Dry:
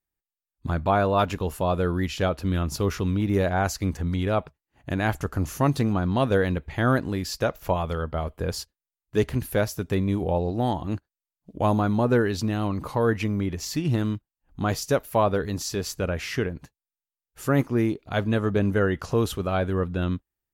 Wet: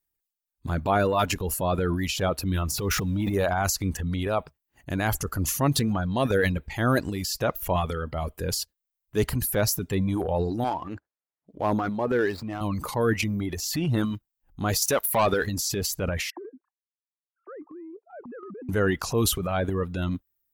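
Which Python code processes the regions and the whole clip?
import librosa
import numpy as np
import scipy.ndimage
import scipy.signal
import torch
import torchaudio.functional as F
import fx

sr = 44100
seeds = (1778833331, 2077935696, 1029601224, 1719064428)

y = fx.chain(x, sr, fx.zero_step(step_db=-40.5),
    fx.transient(attack_db=-7, sustain_db=4), at=(2.69, 3.34))
y = fx.chain(y, sr, fx.median_filter(points=15),
    fx.highpass(hz=57.0, slope=12),
    fx.bass_treble(bass_db=-9, treble_db=-12), at=(10.64, 12.61))
y = fx.chain(y, sr, fx.low_shelf(hz=440.0, db=-12.0),
    fx.leveller(passes=2), at=(14.82, 15.47))
y = fx.chain(y, sr, fx.sine_speech(),
    fx.ladder_lowpass(hz=1200.0, resonance_pct=55),
    fx.level_steps(step_db=13), at=(16.3, 18.69))
y = fx.dereverb_blind(y, sr, rt60_s=1.1)
y = fx.high_shelf(y, sr, hz=7100.0, db=9.0)
y = fx.transient(y, sr, attack_db=-3, sustain_db=9)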